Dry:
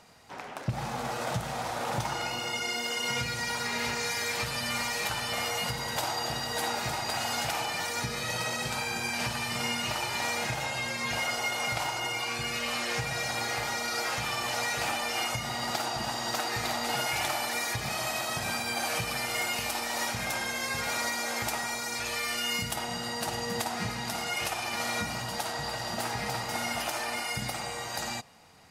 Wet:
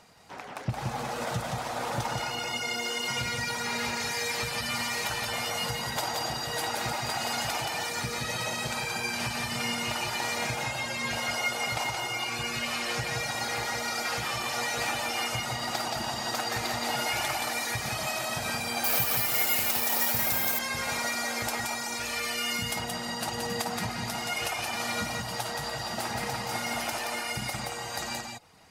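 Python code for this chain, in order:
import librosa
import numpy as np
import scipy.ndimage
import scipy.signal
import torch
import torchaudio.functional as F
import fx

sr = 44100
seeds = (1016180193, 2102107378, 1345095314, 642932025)

y = fx.dereverb_blind(x, sr, rt60_s=0.5)
y = y + 10.0 ** (-3.5 / 20.0) * np.pad(y, (int(174 * sr / 1000.0), 0))[:len(y)]
y = fx.resample_bad(y, sr, factor=3, down='none', up='zero_stuff', at=(18.84, 20.59))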